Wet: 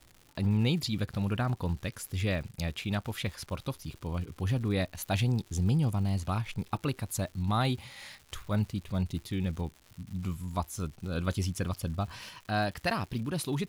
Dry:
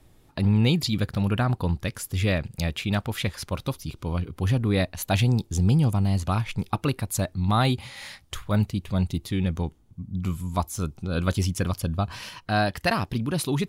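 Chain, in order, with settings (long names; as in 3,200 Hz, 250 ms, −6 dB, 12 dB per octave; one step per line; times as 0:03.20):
surface crackle 220 per second −36 dBFS
level −6.5 dB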